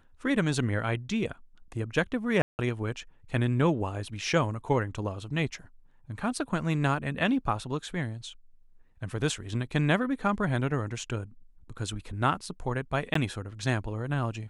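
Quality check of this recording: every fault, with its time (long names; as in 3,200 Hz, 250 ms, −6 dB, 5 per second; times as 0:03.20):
0:02.42–0:02.59: drop-out 169 ms
0:13.14–0:13.15: drop-out 14 ms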